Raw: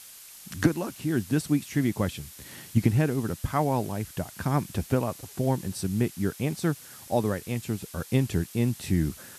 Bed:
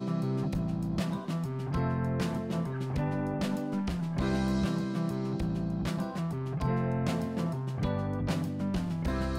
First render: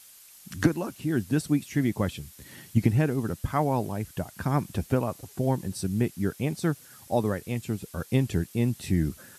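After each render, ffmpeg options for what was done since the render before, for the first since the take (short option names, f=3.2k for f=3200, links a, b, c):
-af "afftdn=nr=6:nf=-47"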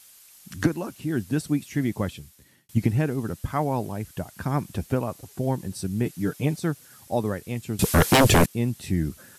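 -filter_complex "[0:a]asettb=1/sr,asplit=3[a][b][c];[a]atrim=end=6.054[d];[b]atrim=start=6.05:end=6.59,asetpts=PTS-STARTPTS,afade=t=in:d=0.004:c=qsin,afade=t=out:st=0.536:d=0.004:c=qsin,aecho=1:1:6.7:0.8,atrim=end_sample=23814[e];[c]atrim=start=6.586[f];[d][e]acrossfade=d=0.004:c1=hsin:c2=qsin[g];[g][f]acrossfade=d=0.004:c1=qsin:c2=hsin,asettb=1/sr,asplit=3[h][i][j];[h]atrim=end=7.794[k];[i]atrim=start=7.79:end=8.46,asetpts=PTS-STARTPTS,afade=t=in:d=0.004:c=qsin,afade=t=out:st=0.666:d=0.004:c=qsin,aeval=exprs='0.266*sin(PI/2*7.08*val(0)/0.266)':c=same[l];[j]atrim=start=8.456[m];[k][l]acrossfade=d=0.004:c1=hsin:c2=qsin[n];[n][m]acrossfade=d=0.004:c1=qsin:c2=hsin,asplit=2[o][p];[o]atrim=end=2.69,asetpts=PTS-STARTPTS,afade=t=out:st=2.02:d=0.67[q];[p]atrim=start=2.69,asetpts=PTS-STARTPTS,afade=t=in:d=0.004:c=hsin[r];[q][r]concat=n=2:v=0:a=1"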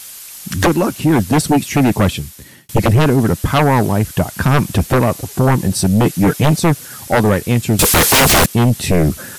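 -af "aeval=exprs='0.447*sin(PI/2*5.01*val(0)/0.447)':c=same"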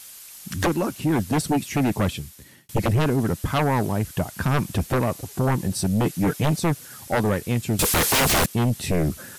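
-af "volume=-9dB"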